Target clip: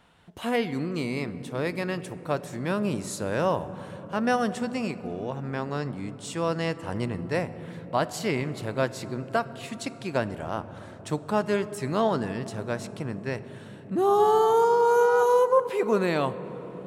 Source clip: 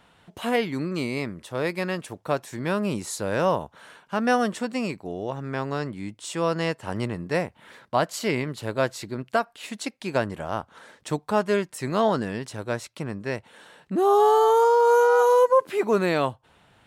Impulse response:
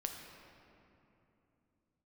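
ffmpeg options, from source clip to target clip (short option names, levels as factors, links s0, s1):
-filter_complex "[0:a]asplit=2[s0][s1];[1:a]atrim=start_sample=2205,asetrate=23373,aresample=44100,lowshelf=f=330:g=9[s2];[s1][s2]afir=irnorm=-1:irlink=0,volume=0.237[s3];[s0][s3]amix=inputs=2:normalize=0,volume=0.562"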